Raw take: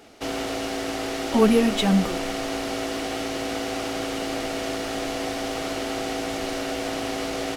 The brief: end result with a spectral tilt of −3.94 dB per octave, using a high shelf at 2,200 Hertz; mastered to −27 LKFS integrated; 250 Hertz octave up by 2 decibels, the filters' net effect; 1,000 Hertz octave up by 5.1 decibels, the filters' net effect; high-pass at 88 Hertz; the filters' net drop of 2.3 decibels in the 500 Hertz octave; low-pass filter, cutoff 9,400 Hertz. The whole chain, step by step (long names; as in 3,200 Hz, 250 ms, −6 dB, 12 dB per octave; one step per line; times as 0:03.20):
high-pass filter 88 Hz
low-pass filter 9,400 Hz
parametric band 250 Hz +3.5 dB
parametric band 500 Hz −7 dB
parametric band 1,000 Hz +9 dB
high-shelf EQ 2,200 Hz +3.5 dB
level −3 dB